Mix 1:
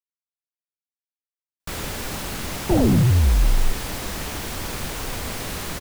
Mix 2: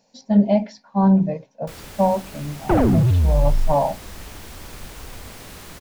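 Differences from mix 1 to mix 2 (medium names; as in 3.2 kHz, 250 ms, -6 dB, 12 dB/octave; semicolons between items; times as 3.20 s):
speech: unmuted; first sound -9.5 dB; second sound: remove boxcar filter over 34 samples; reverb: on, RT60 0.70 s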